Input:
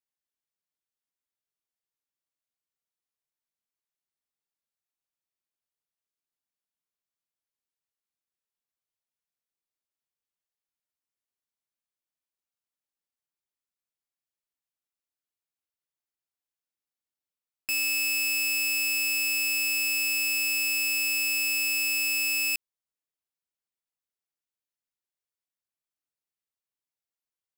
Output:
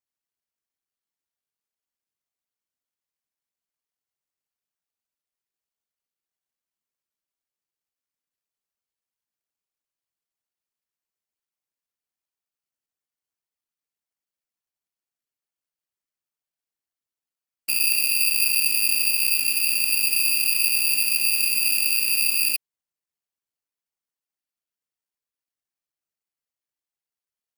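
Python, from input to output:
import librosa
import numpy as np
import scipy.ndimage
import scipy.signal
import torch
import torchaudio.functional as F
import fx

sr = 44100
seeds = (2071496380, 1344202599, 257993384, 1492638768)

y = fx.whisperise(x, sr, seeds[0])
y = (np.kron(scipy.signal.resample_poly(y, 1, 6), np.eye(6)[0]) * 6)[:len(y)]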